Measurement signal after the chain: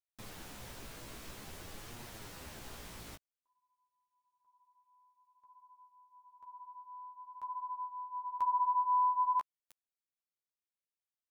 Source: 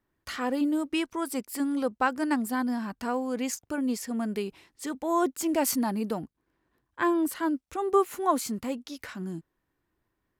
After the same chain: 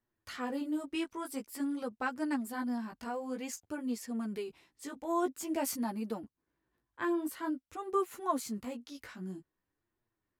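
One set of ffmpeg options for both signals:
ffmpeg -i in.wav -af "flanger=delay=8.3:depth=9.8:regen=-1:speed=0.5:shape=sinusoidal,volume=-5dB" out.wav

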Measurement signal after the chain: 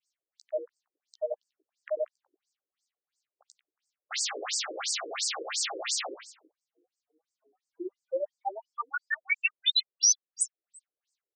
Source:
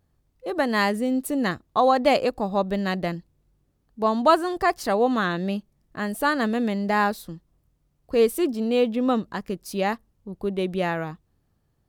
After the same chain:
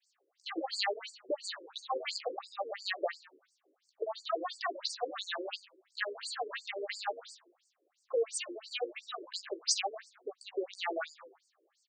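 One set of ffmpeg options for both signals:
ffmpeg -i in.wav -filter_complex "[0:a]acompressor=threshold=-30dB:ratio=12,highpass=frequency=130:width=0.5412,highpass=frequency=130:width=1.3066,adynamicequalizer=threshold=0.00501:dfrequency=840:dqfactor=1.1:tfrequency=840:tqfactor=1.1:attack=5:release=100:ratio=0.375:range=3:mode=boostabove:tftype=bell,asuperstop=centerf=950:order=4:qfactor=4,bandreject=frequency=50:width_type=h:width=6,bandreject=frequency=100:width_type=h:width=6,bandreject=frequency=150:width_type=h:width=6,bandreject=frequency=200:width_type=h:width=6,bandreject=frequency=250:width_type=h:width=6,bandreject=frequency=300:width_type=h:width=6,bandreject=frequency=350:width_type=h:width=6,asplit=2[link_01][link_02];[link_02]adelay=15,volume=-6dB[link_03];[link_01][link_03]amix=inputs=2:normalize=0,asplit=2[link_04][link_05];[link_05]asplit=4[link_06][link_07][link_08][link_09];[link_06]adelay=92,afreqshift=-140,volume=-14.5dB[link_10];[link_07]adelay=184,afreqshift=-280,volume=-21.4dB[link_11];[link_08]adelay=276,afreqshift=-420,volume=-28.4dB[link_12];[link_09]adelay=368,afreqshift=-560,volume=-35.3dB[link_13];[link_10][link_11][link_12][link_13]amix=inputs=4:normalize=0[link_14];[link_04][link_14]amix=inputs=2:normalize=0,acrossover=split=650|2100[link_15][link_16][link_17];[link_15]acompressor=threshold=-42dB:ratio=4[link_18];[link_16]acompressor=threshold=-40dB:ratio=4[link_19];[link_17]acompressor=threshold=-33dB:ratio=4[link_20];[link_18][link_19][link_20]amix=inputs=3:normalize=0,highshelf=frequency=4300:gain=11,alimiter=level_in=16dB:limit=-1dB:release=50:level=0:latency=1,afftfilt=real='re*between(b*sr/1024,380*pow(6400/380,0.5+0.5*sin(2*PI*2.9*pts/sr))/1.41,380*pow(6400/380,0.5+0.5*sin(2*PI*2.9*pts/sr))*1.41)':imag='im*between(b*sr/1024,380*pow(6400/380,0.5+0.5*sin(2*PI*2.9*pts/sr))/1.41,380*pow(6400/380,0.5+0.5*sin(2*PI*2.9*pts/sr))*1.41)':win_size=1024:overlap=0.75,volume=-8dB" out.wav

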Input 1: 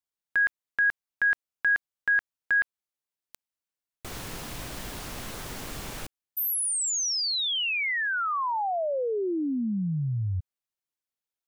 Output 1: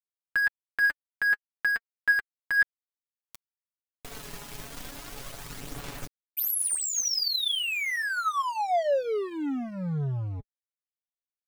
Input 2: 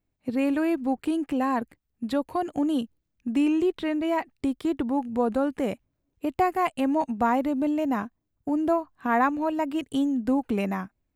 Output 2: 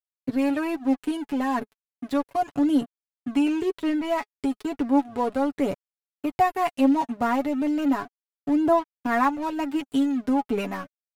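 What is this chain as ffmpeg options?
ffmpeg -i in.wav -af "aeval=exprs='sgn(val(0))*max(abs(val(0))-0.0106,0)':channel_layout=same,aphaser=in_gain=1:out_gain=1:delay=4.9:decay=0.39:speed=0.34:type=sinusoidal,aecho=1:1:7.1:0.59" out.wav

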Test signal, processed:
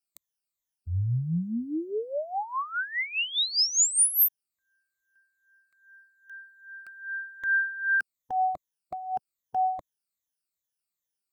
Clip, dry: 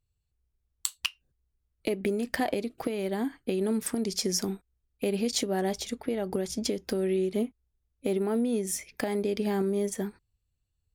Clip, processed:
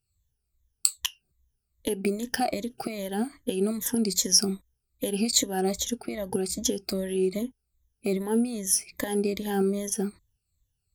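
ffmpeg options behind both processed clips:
ffmpeg -i in.wav -af "afftfilt=real='re*pow(10,16/40*sin(2*PI*(1.1*log(max(b,1)*sr/1024/100)/log(2)-(-2.5)*(pts-256)/sr)))':imag='im*pow(10,16/40*sin(2*PI*(1.1*log(max(b,1)*sr/1024/100)/log(2)-(-2.5)*(pts-256)/sr)))':win_size=1024:overlap=0.75,bass=frequency=250:gain=4,treble=frequency=4000:gain=9,volume=-3dB" out.wav

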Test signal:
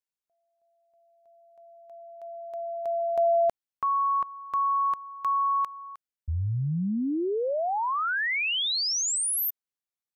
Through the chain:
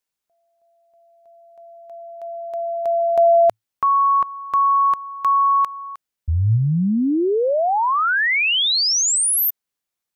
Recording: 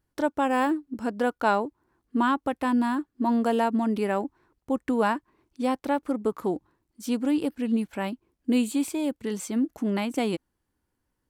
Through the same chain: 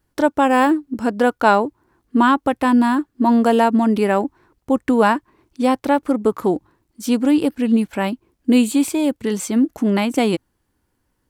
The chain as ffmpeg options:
ffmpeg -i in.wav -af "adynamicequalizer=threshold=0.00112:dfrequency=110:dqfactor=7.5:tfrequency=110:tqfactor=7.5:attack=5:release=100:ratio=0.375:range=2:mode=boostabove:tftype=bell,volume=9dB" out.wav

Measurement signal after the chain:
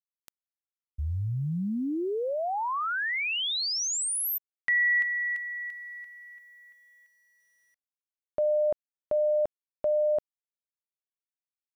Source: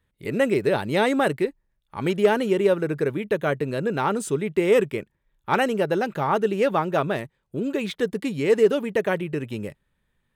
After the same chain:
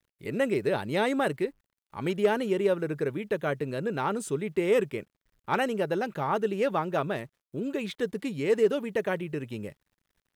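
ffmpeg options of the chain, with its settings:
ffmpeg -i in.wav -af "acrusher=bits=10:mix=0:aa=0.000001,volume=-5.5dB" out.wav

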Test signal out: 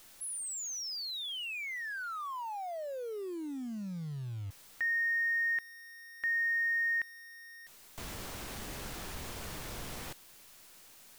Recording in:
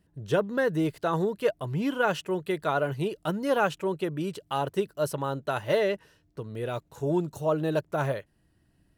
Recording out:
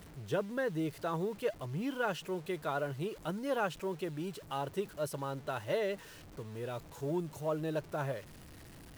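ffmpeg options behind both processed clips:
ffmpeg -i in.wav -af "aeval=exprs='val(0)+0.5*0.01*sgn(val(0))':channel_layout=same,acrusher=bits=9:dc=4:mix=0:aa=0.000001,volume=-9dB" out.wav

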